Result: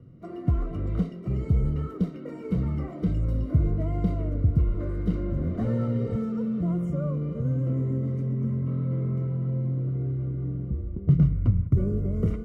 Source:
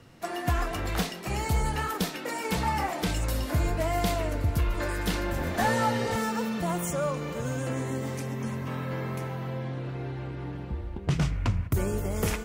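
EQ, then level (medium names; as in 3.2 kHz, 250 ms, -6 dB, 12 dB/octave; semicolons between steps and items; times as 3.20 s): boxcar filter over 52 samples; peaking EQ 140 Hz +6.5 dB 1.1 oct; +2.0 dB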